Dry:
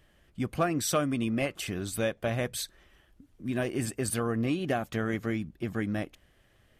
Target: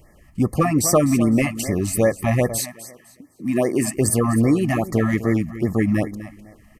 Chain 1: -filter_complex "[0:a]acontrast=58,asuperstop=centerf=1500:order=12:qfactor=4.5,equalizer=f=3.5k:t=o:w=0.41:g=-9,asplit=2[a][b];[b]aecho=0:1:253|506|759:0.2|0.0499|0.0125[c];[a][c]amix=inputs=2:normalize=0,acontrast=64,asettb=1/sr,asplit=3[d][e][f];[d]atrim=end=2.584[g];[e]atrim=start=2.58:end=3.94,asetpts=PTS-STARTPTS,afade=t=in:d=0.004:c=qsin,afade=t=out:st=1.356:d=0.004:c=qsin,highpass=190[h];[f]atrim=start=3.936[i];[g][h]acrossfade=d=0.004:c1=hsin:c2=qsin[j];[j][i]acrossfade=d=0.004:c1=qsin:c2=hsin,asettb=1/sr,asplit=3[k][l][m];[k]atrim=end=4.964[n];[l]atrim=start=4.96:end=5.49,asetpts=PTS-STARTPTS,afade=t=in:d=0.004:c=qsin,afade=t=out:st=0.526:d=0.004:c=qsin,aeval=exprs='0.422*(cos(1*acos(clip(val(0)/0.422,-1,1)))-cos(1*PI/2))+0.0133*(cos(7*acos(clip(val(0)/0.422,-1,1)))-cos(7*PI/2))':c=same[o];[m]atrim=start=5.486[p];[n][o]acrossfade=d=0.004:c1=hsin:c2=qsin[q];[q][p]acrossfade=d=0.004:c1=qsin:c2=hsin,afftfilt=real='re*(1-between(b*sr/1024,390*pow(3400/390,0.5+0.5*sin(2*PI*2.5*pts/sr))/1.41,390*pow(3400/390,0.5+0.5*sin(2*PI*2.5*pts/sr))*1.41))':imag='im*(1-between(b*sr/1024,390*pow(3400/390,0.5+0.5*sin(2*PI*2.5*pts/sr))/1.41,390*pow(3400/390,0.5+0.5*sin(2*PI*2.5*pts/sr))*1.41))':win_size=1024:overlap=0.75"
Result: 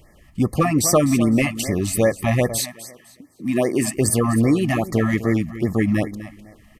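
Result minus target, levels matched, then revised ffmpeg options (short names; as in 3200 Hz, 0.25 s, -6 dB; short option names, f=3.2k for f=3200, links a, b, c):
4000 Hz band +3.5 dB
-filter_complex "[0:a]acontrast=58,asuperstop=centerf=1500:order=12:qfactor=4.5,equalizer=f=3.5k:t=o:w=0.41:g=-20,asplit=2[a][b];[b]aecho=0:1:253|506|759:0.2|0.0499|0.0125[c];[a][c]amix=inputs=2:normalize=0,acontrast=64,asettb=1/sr,asplit=3[d][e][f];[d]atrim=end=2.584[g];[e]atrim=start=2.58:end=3.94,asetpts=PTS-STARTPTS,afade=t=in:d=0.004:c=qsin,afade=t=out:st=1.356:d=0.004:c=qsin,highpass=190[h];[f]atrim=start=3.936[i];[g][h]acrossfade=d=0.004:c1=hsin:c2=qsin[j];[j][i]acrossfade=d=0.004:c1=qsin:c2=hsin,asettb=1/sr,asplit=3[k][l][m];[k]atrim=end=4.964[n];[l]atrim=start=4.96:end=5.49,asetpts=PTS-STARTPTS,afade=t=in:d=0.004:c=qsin,afade=t=out:st=0.526:d=0.004:c=qsin,aeval=exprs='0.422*(cos(1*acos(clip(val(0)/0.422,-1,1)))-cos(1*PI/2))+0.0133*(cos(7*acos(clip(val(0)/0.422,-1,1)))-cos(7*PI/2))':c=same[o];[m]atrim=start=5.486[p];[n][o]acrossfade=d=0.004:c1=hsin:c2=qsin[q];[q][p]acrossfade=d=0.004:c1=qsin:c2=hsin,afftfilt=real='re*(1-between(b*sr/1024,390*pow(3400/390,0.5+0.5*sin(2*PI*2.5*pts/sr))/1.41,390*pow(3400/390,0.5+0.5*sin(2*PI*2.5*pts/sr))*1.41))':imag='im*(1-between(b*sr/1024,390*pow(3400/390,0.5+0.5*sin(2*PI*2.5*pts/sr))/1.41,390*pow(3400/390,0.5+0.5*sin(2*PI*2.5*pts/sr))*1.41))':win_size=1024:overlap=0.75"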